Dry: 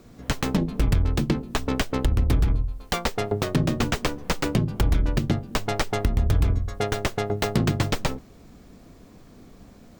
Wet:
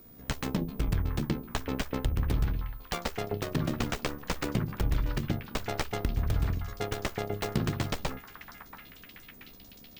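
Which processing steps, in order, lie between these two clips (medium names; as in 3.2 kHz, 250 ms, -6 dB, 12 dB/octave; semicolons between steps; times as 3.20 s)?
AM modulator 71 Hz, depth 40%; whistle 15 kHz -47 dBFS; repeats whose band climbs or falls 681 ms, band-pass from 1.3 kHz, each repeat 0.7 oct, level -7 dB; trim -5 dB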